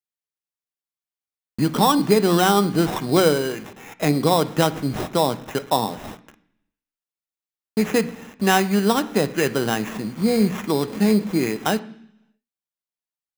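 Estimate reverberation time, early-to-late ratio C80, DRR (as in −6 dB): 0.70 s, 20.0 dB, 10.0 dB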